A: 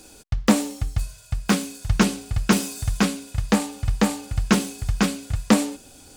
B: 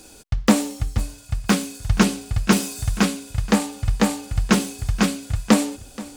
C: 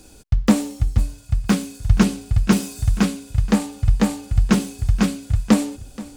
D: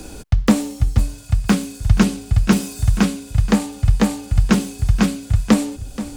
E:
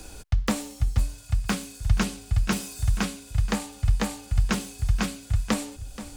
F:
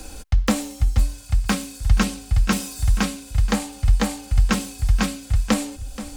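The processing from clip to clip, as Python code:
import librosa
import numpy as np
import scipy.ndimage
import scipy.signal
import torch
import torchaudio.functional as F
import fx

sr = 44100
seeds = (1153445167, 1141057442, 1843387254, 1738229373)

y1 = x + 10.0 ** (-18.5 / 20.0) * np.pad(x, (int(477 * sr / 1000.0), 0))[:len(x)]
y1 = y1 * 10.0 ** (1.5 / 20.0)
y2 = fx.low_shelf(y1, sr, hz=230.0, db=10.0)
y2 = y2 * 10.0 ** (-4.0 / 20.0)
y3 = fx.band_squash(y2, sr, depth_pct=40)
y3 = y3 * 10.0 ** (2.0 / 20.0)
y4 = fx.peak_eq(y3, sr, hz=250.0, db=-8.5, octaves=2.2)
y4 = y4 * 10.0 ** (-5.0 / 20.0)
y5 = y4 + 0.43 * np.pad(y4, (int(3.8 * sr / 1000.0), 0))[:len(y4)]
y5 = y5 * 10.0 ** (4.0 / 20.0)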